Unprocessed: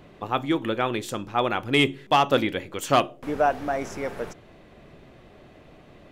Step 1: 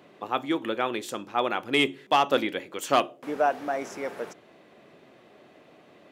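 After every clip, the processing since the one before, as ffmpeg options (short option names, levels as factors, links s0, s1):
-af "highpass=240,volume=0.794"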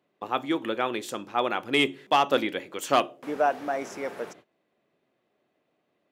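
-af "agate=range=0.1:threshold=0.00355:ratio=16:detection=peak"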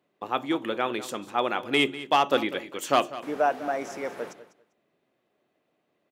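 -af "aecho=1:1:198|396:0.168|0.0285"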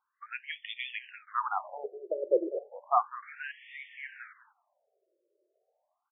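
-af "afftfilt=real='re*between(b*sr/1024,440*pow(2600/440,0.5+0.5*sin(2*PI*0.33*pts/sr))/1.41,440*pow(2600/440,0.5+0.5*sin(2*PI*0.33*pts/sr))*1.41)':imag='im*between(b*sr/1024,440*pow(2600/440,0.5+0.5*sin(2*PI*0.33*pts/sr))/1.41,440*pow(2600/440,0.5+0.5*sin(2*PI*0.33*pts/sr))*1.41)':win_size=1024:overlap=0.75"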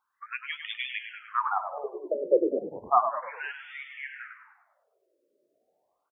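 -filter_complex "[0:a]asplit=6[s0][s1][s2][s3][s4][s5];[s1]adelay=101,afreqshift=-61,volume=0.376[s6];[s2]adelay=202,afreqshift=-122,volume=0.176[s7];[s3]adelay=303,afreqshift=-183,volume=0.0832[s8];[s4]adelay=404,afreqshift=-244,volume=0.0389[s9];[s5]adelay=505,afreqshift=-305,volume=0.0184[s10];[s0][s6][s7][s8][s9][s10]amix=inputs=6:normalize=0,volume=1.5"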